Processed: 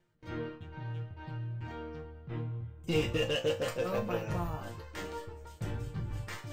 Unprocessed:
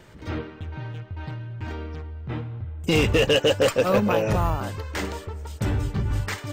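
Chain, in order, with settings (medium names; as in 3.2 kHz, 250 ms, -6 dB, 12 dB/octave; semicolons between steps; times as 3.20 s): gate with hold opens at -30 dBFS; bass shelf 190 Hz +4 dB; reverse; upward compressor, threshold -25 dBFS; reverse; chord resonator A#2 sus4, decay 0.24 s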